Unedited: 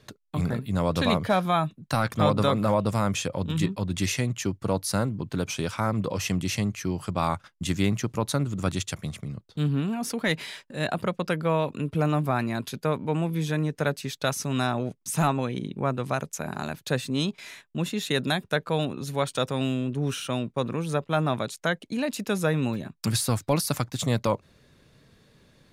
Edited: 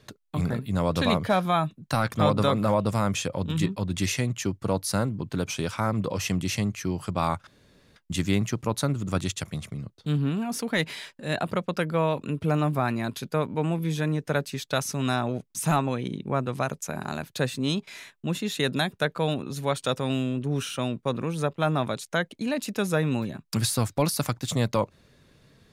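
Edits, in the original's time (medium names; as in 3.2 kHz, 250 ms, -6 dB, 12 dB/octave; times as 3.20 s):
7.47 s: insert room tone 0.49 s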